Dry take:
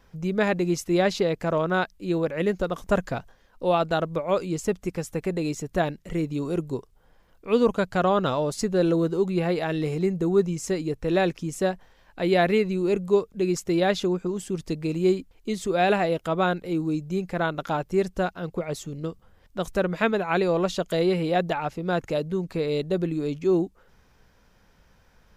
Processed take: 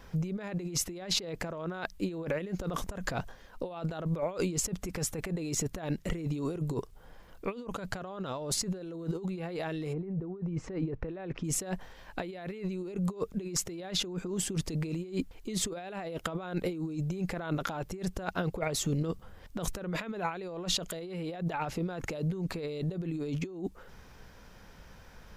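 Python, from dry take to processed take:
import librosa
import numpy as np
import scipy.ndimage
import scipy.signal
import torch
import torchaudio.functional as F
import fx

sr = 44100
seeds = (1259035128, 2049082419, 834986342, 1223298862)

y = fx.lowpass(x, sr, hz=fx.line((9.92, 1200.0), (11.43, 2200.0)), slope=12, at=(9.92, 11.43), fade=0.02)
y = fx.over_compress(y, sr, threshold_db=-34.0, ratio=-1.0)
y = y * librosa.db_to_amplitude(-1.5)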